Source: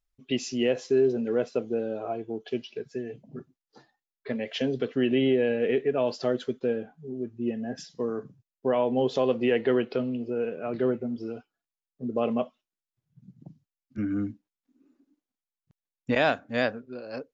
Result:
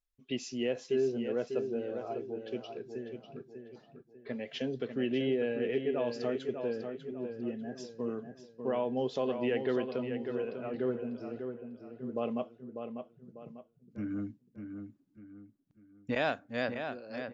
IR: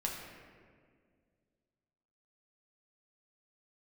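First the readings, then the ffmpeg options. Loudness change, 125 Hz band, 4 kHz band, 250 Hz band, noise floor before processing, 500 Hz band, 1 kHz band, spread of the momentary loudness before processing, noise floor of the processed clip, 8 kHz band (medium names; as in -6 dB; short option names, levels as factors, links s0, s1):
-7.0 dB, -6.5 dB, -7.0 dB, -6.5 dB, under -85 dBFS, -6.5 dB, -6.5 dB, 14 LU, -69 dBFS, no reading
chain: -filter_complex "[0:a]asplit=2[s0][s1];[s1]adelay=596,lowpass=f=3500:p=1,volume=0.447,asplit=2[s2][s3];[s3]adelay=596,lowpass=f=3500:p=1,volume=0.38,asplit=2[s4][s5];[s5]adelay=596,lowpass=f=3500:p=1,volume=0.38,asplit=2[s6][s7];[s7]adelay=596,lowpass=f=3500:p=1,volume=0.38[s8];[s0][s2][s4][s6][s8]amix=inputs=5:normalize=0,volume=0.422"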